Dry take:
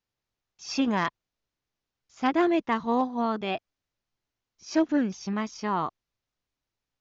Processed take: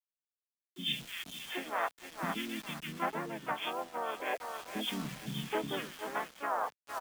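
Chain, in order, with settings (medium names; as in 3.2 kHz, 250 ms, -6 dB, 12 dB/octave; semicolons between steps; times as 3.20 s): hum notches 50/100/150/200/250/300 Hz; harmony voices -7 st -1 dB, -4 st -4 dB, +5 st -6 dB; FFT band-pass 120–3600 Hz; on a send: thinning echo 461 ms, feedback 40%, high-pass 480 Hz, level -14 dB; on the sum: compression 12:1, threshold -26 dBFS, peak gain reduction 13 dB; tilt EQ +3.5 dB/octave; three bands offset in time lows, highs, mids 150/790 ms, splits 290/2300 Hz; bit crusher 8-bit; gain riding 0.5 s; three bands expanded up and down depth 40%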